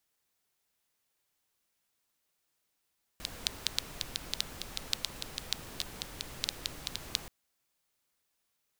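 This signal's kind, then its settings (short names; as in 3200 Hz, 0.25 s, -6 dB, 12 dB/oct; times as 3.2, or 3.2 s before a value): rain from filtered ticks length 4.08 s, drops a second 6.1, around 3900 Hz, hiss -5 dB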